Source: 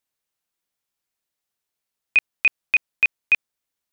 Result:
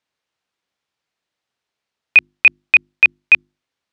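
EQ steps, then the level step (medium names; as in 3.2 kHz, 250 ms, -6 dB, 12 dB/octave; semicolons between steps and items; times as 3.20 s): high-pass 64 Hz; low-pass 4.4 kHz 12 dB/octave; hum notches 50/100/150/200/250/300/350 Hz; +8.0 dB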